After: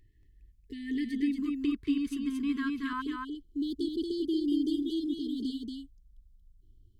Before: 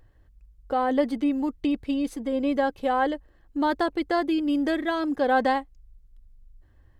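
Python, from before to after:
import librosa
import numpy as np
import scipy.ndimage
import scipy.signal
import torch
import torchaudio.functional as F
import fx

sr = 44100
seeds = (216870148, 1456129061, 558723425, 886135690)

y = fx.brickwall_bandstop(x, sr, low_hz=440.0, high_hz=fx.steps((0.0, 1700.0), (1.37, 1000.0), (3.0, 2900.0)))
y = y + 10.0 ** (-3.5 / 20.0) * np.pad(y, (int(231 * sr / 1000.0), 0))[:len(y)]
y = y * librosa.db_to_amplitude(-5.5)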